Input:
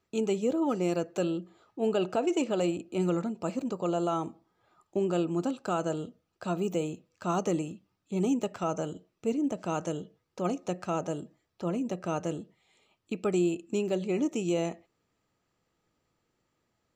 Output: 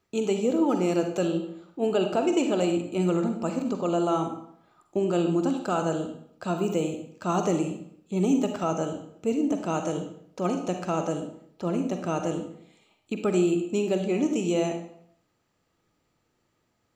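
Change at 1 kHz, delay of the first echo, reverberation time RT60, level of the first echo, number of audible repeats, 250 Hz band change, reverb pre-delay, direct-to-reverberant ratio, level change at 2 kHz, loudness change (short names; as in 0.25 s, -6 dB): +4.0 dB, none, 0.65 s, none, none, +4.5 dB, 39 ms, 5.5 dB, +4.0 dB, +4.0 dB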